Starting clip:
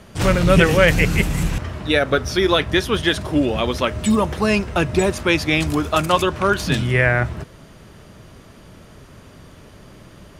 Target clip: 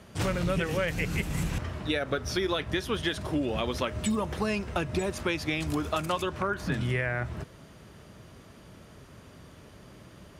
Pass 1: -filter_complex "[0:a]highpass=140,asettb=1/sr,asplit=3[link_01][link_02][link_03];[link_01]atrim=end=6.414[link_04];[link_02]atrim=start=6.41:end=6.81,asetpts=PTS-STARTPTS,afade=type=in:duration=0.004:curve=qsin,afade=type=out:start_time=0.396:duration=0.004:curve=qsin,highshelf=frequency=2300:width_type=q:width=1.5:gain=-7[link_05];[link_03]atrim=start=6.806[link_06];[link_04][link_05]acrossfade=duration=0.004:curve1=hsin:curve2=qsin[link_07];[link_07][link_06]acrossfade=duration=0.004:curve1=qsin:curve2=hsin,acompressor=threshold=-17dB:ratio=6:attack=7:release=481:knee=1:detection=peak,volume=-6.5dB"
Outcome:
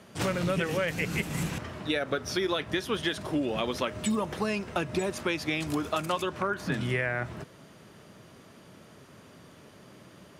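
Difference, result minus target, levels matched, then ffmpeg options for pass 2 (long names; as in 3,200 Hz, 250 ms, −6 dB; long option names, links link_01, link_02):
125 Hz band −2.5 dB
-filter_complex "[0:a]highpass=46,asettb=1/sr,asplit=3[link_01][link_02][link_03];[link_01]atrim=end=6.414[link_04];[link_02]atrim=start=6.41:end=6.81,asetpts=PTS-STARTPTS,afade=type=in:duration=0.004:curve=qsin,afade=type=out:start_time=0.396:duration=0.004:curve=qsin,highshelf=frequency=2300:width_type=q:width=1.5:gain=-7[link_05];[link_03]atrim=start=6.806[link_06];[link_04][link_05]acrossfade=duration=0.004:curve1=hsin:curve2=qsin[link_07];[link_07][link_06]acrossfade=duration=0.004:curve1=qsin:curve2=hsin,acompressor=threshold=-17dB:ratio=6:attack=7:release=481:knee=1:detection=peak,volume=-6.5dB"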